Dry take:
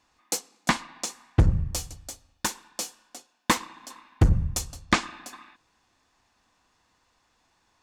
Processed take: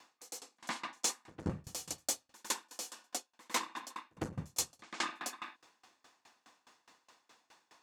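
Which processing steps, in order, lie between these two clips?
high-pass filter 280 Hz 12 dB per octave
reversed playback
downward compressor 8 to 1, threshold −38 dBFS, peak gain reduction 21.5 dB
reversed playback
backwards echo 105 ms −22.5 dB
tremolo with a ramp in dB decaying 4.8 Hz, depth 25 dB
level +10.5 dB

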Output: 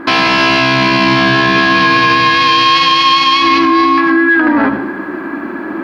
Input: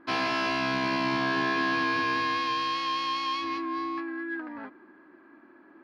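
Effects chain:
in parallel at −2 dB: downward compressor, threshold −43 dBFS, peak gain reduction 17 dB
on the sum: dynamic equaliser 3,000 Hz, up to +5 dB, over −41 dBFS, Q 0.9
speech leveller within 4 dB
on a send at −10 dB: low-shelf EQ 130 Hz +7.5 dB + convolution reverb, pre-delay 77 ms
on the sum: boost into a limiter +24.5 dB
level −1.5 dB

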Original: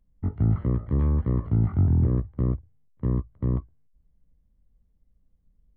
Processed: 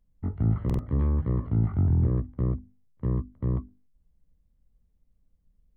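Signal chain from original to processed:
mains-hum notches 50/100/150/200/250/300/350/400 Hz
buffer that repeats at 0:00.65, samples 2,048, times 2
level −1.5 dB

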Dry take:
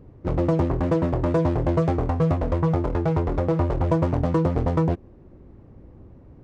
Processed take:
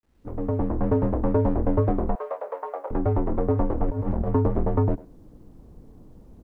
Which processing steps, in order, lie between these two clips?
fade in at the beginning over 0.85 s
low-pass filter 1,300 Hz 12 dB per octave
far-end echo of a speakerphone 100 ms, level −18 dB
0:03.88–0:04.28: compressor whose output falls as the input rises −24 dBFS, ratio −0.5
frequency shifter −60 Hz
0:02.15–0:02.91: Chebyshev high-pass filter 510 Hz, order 4
bit-depth reduction 12 bits, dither none

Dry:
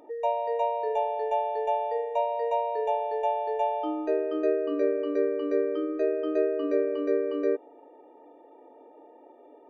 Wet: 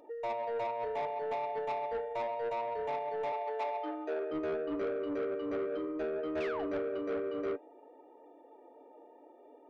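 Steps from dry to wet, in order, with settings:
flanger 0.61 Hz, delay 1.7 ms, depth 6.9 ms, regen +68%
0:06.40–0:06.66: sound drawn into the spectrogram fall 560–2,800 Hz −38 dBFS
soft clipping −30.5 dBFS, distortion −11 dB
0:03.32–0:04.31: high-pass filter 310 Hz 24 dB per octave

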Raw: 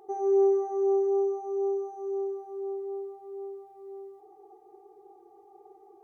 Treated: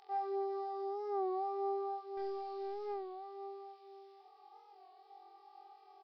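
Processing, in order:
high-pass filter 860 Hz 12 dB per octave
first difference
in parallel at +1.5 dB: brickwall limiter −55 dBFS, peak gain reduction 8 dB
0:02.17–0:02.93: on the sum: leveller curve on the samples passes 2
on a send: flutter between parallel walls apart 3.9 metres, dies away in 0.71 s
on the sum: downsampling to 11,025 Hz
wow of a warped record 33 1/3 rpm, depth 100 cents
level +11 dB

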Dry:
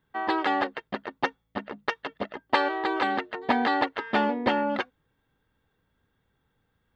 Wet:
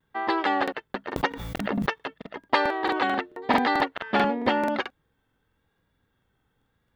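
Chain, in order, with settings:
pitch vibrato 0.9 Hz 46 cents
regular buffer underruns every 0.22 s, samples 2,048, repeat, from 0:00.63
0:01.16–0:02.02: background raised ahead of every attack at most 25 dB per second
level +1 dB

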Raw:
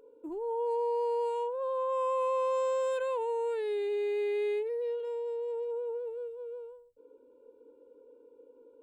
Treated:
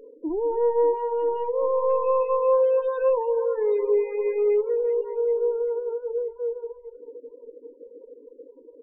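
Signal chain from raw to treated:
mains-hum notches 50/100/150/200 Hz
in parallel at −5 dB: soft clipping −32.5 dBFS, distortion −12 dB
on the sum: low-shelf EQ 190 Hz −3 dB
double-tracking delay 19 ms −12 dB
delay that swaps between a low-pass and a high-pass 195 ms, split 890 Hz, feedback 78%, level −10 dB
reverb reduction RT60 0.77 s
spectral tilt −3 dB per octave
spectral peaks only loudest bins 16
level +4 dB

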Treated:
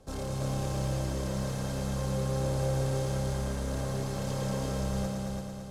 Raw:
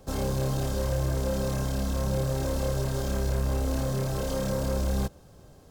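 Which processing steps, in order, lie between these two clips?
low-pass filter 12,000 Hz 24 dB per octave
in parallel at −7 dB: hard clipping −33 dBFS, distortion −7 dB
on the sum: echo machine with several playback heads 112 ms, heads all three, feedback 60%, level −6 dB
level −8 dB

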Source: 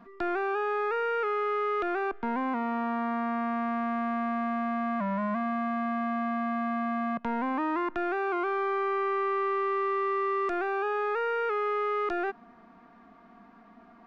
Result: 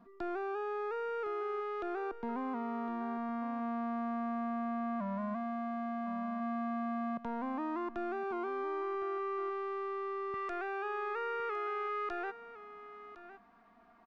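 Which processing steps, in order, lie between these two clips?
parametric band 2,100 Hz −7 dB 1.6 octaves, from 0:10.34 230 Hz
single-tap delay 1,059 ms −14 dB
level −6.5 dB

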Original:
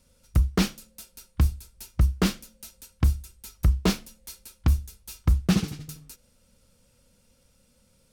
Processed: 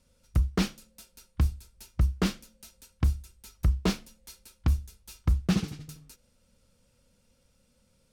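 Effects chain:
high-shelf EQ 9,700 Hz −7 dB
level −3.5 dB

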